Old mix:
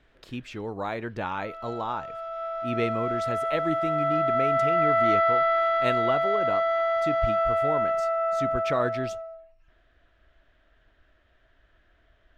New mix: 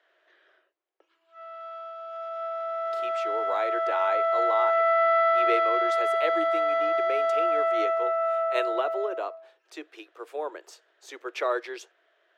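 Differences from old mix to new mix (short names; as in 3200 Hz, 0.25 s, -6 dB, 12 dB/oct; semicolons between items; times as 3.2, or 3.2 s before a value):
speech: entry +2.70 s; master: add steep high-pass 340 Hz 72 dB/oct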